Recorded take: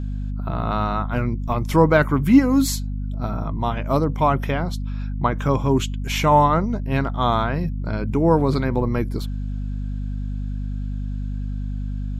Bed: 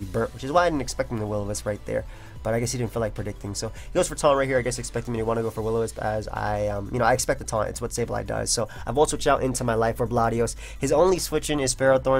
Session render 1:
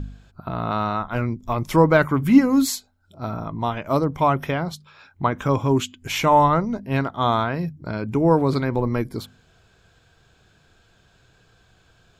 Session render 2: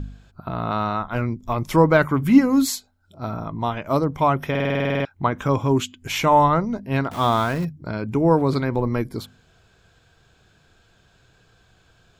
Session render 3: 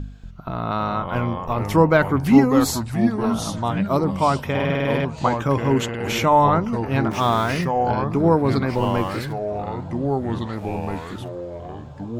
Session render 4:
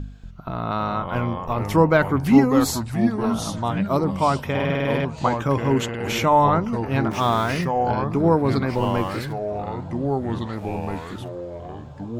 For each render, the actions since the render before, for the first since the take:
hum removal 50 Hz, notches 5
0:04.50: stutter in place 0.05 s, 11 plays; 0:07.11–0:07.65: converter with a step at zero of −30.5 dBFS
feedback echo with a band-pass in the loop 807 ms, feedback 81%, band-pass 800 Hz, level −23.5 dB; delay with pitch and tempo change per echo 236 ms, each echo −3 semitones, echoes 3, each echo −6 dB
level −1 dB

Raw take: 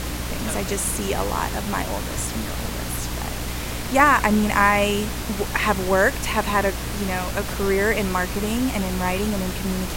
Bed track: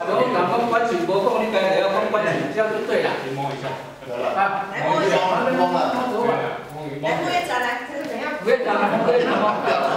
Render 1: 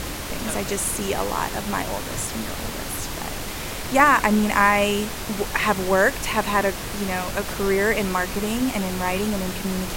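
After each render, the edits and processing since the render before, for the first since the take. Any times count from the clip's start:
hum removal 60 Hz, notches 5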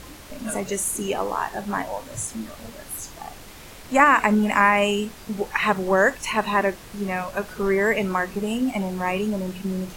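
noise reduction from a noise print 12 dB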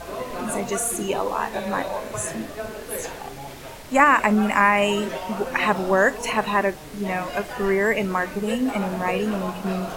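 mix in bed track −12.5 dB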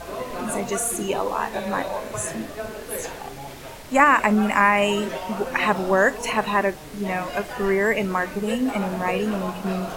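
no processing that can be heard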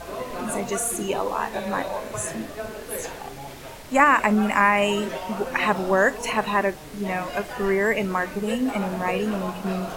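level −1 dB

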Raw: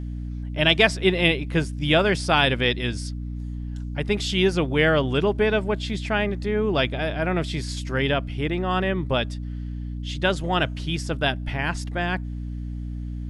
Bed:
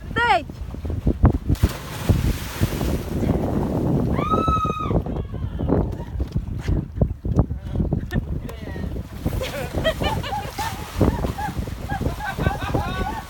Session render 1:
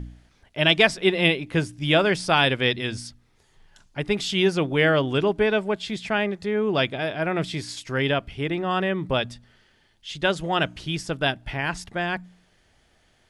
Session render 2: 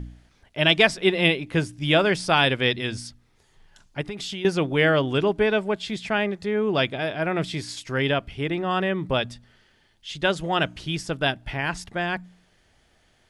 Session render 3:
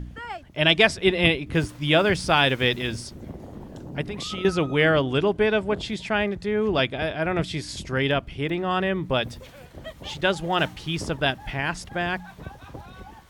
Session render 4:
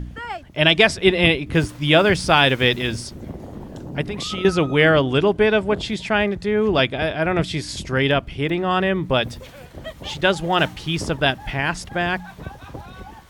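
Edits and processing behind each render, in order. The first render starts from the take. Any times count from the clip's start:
hum removal 60 Hz, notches 5
0:04.01–0:04.45: downward compressor, threshold −29 dBFS
mix in bed −17.5 dB
level +4.5 dB; brickwall limiter −2 dBFS, peak gain reduction 2.5 dB

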